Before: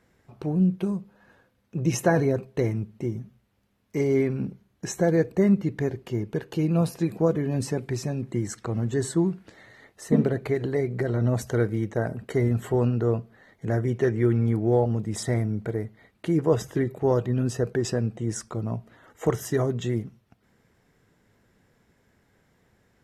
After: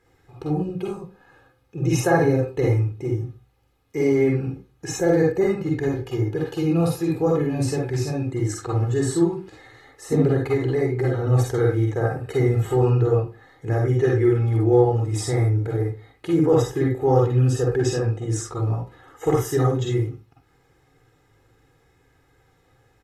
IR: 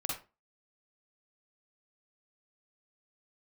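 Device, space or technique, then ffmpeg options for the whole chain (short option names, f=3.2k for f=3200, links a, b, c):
microphone above a desk: -filter_complex "[0:a]aecho=1:1:2.4:0.72[a];[1:a]atrim=start_sample=2205[b];[a][b]afir=irnorm=-1:irlink=0"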